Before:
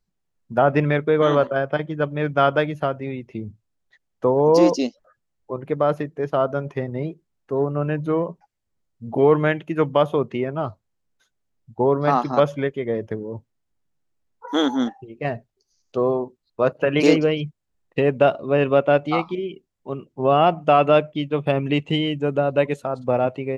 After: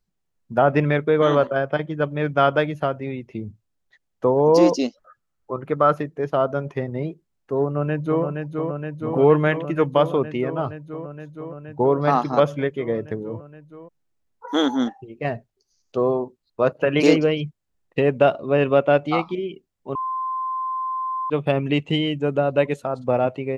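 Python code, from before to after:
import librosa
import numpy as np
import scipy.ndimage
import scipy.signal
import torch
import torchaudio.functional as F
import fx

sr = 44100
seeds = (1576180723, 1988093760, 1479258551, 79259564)

y = fx.peak_eq(x, sr, hz=1300.0, db=11.0, octaves=0.39, at=(4.83, 5.99))
y = fx.echo_throw(y, sr, start_s=7.64, length_s=0.6, ms=470, feedback_pct=85, wet_db=-5.0)
y = fx.edit(y, sr, fx.bleep(start_s=19.95, length_s=1.35, hz=1040.0, db=-23.0), tone=tone)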